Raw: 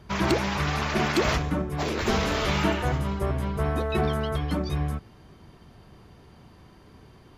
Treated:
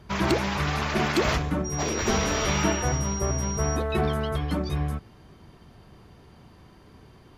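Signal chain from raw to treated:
0:01.64–0:03.75: steady tone 5,700 Hz −33 dBFS

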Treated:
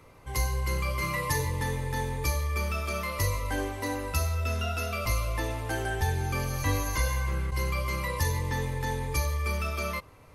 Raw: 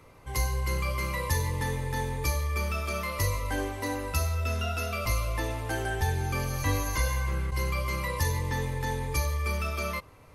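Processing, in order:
0:01.01–0:01.45: comb filter 6.7 ms, depth 69%

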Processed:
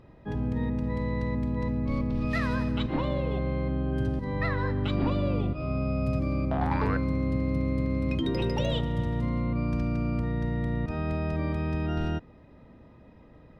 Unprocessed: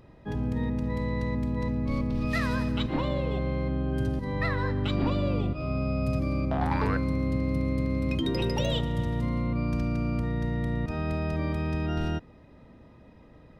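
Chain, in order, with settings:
high-shelf EQ 5,600 Hz −10.5 dB

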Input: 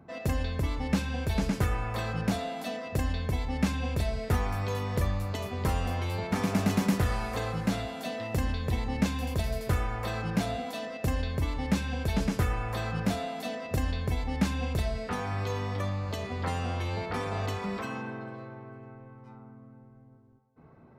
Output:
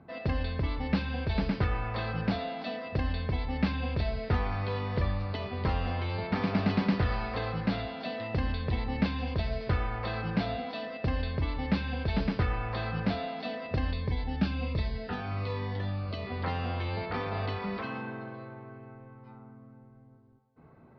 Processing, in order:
elliptic low-pass filter 4,700 Hz, stop band 40 dB
0:13.93–0:16.27: phaser whose notches keep moving one way falling 1.3 Hz

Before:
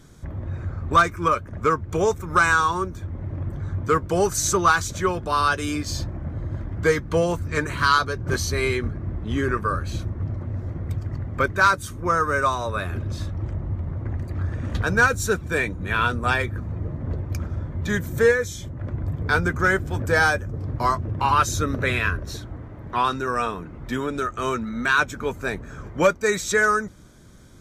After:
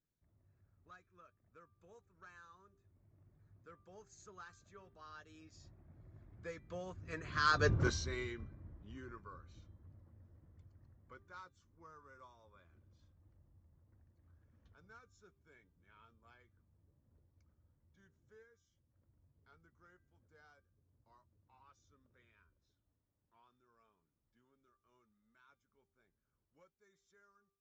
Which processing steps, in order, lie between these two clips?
source passing by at 0:07.70, 20 m/s, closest 1.1 metres
hum removal 395.2 Hz, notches 10
downsampling to 16,000 Hz

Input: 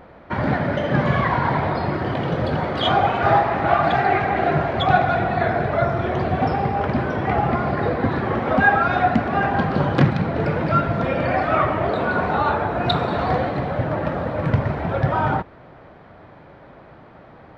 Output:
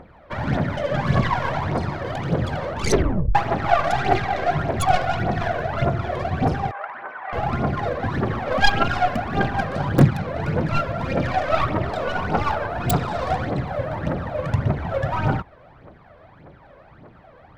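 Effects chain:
stylus tracing distortion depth 0.43 ms
0:02.64: tape stop 0.71 s
phase shifter 1.7 Hz, delay 2 ms, feedback 65%
0:06.71–0:07.33: flat-topped band-pass 1,300 Hz, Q 0.99
level −5.5 dB

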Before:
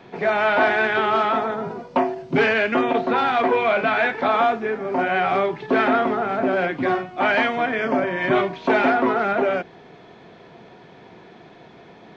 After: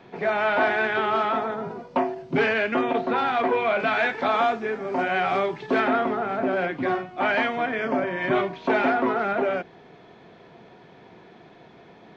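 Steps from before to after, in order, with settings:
high-shelf EQ 4,800 Hz −2.5 dB, from 0:03.80 +8.5 dB, from 0:05.80 −2.5 dB
level −3.5 dB

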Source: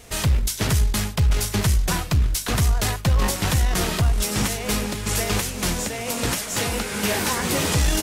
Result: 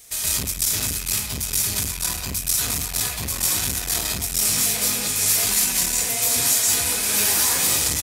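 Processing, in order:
loose part that buzzes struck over −29 dBFS, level −22 dBFS
0:05.33–0:05.83: comb filter 5.2 ms, depth 75%
far-end echo of a speakerphone 180 ms, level −9 dB
brickwall limiter −15.5 dBFS, peak gain reduction 6 dB
first-order pre-emphasis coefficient 0.9
notch filter 2,800 Hz, Q 13
convolution reverb RT60 0.50 s, pre-delay 118 ms, DRR −8 dB
saturating transformer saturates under 1,100 Hz
level +4 dB

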